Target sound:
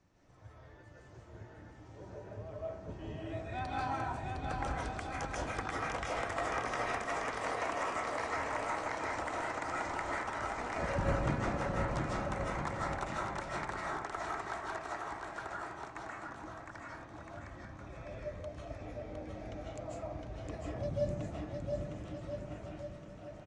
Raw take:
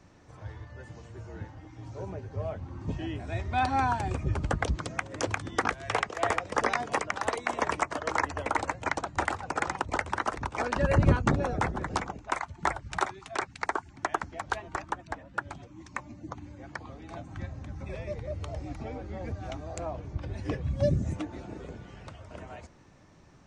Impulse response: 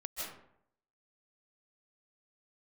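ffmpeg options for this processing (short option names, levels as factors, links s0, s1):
-filter_complex "[0:a]asettb=1/sr,asplit=3[s0][s1][s2];[s0]atrim=end=3.904[s3];[s1]atrim=start=3.9:end=4.39,asetpts=PTS-STARTPTS,afade=t=in:d=0.004:c=qsin,afade=t=out:st=0.486:d=0.004:c=qsin,acompressor=threshold=0.0355:ratio=6[s4];[s2]atrim=start=4.386[s5];[s3][s4]acrossfade=d=0.004:c1=hsin:c2=qsin[s6];[s6][s5]acrossfade=d=0.004:c1=qsin:c2=hsin,aecho=1:1:710|1314|1826|2263|2633:0.631|0.398|0.251|0.158|0.1[s7];[1:a]atrim=start_sample=2205[s8];[s7][s8]afir=irnorm=-1:irlink=0,volume=0.355"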